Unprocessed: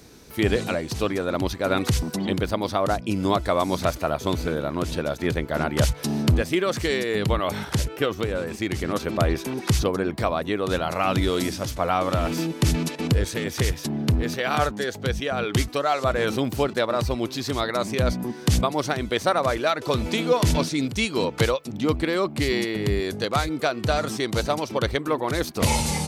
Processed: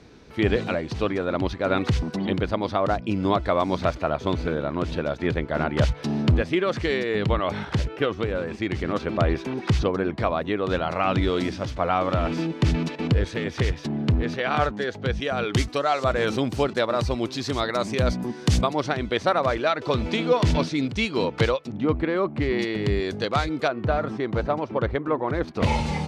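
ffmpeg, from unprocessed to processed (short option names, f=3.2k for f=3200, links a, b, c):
-af "asetnsamples=n=441:p=0,asendcmd='15.2 lowpass f 7000;18.73 lowpass f 4200;21.72 lowpass f 2000;22.59 lowpass f 4700;23.68 lowpass f 1700;25.48 lowpass f 2900',lowpass=3.5k"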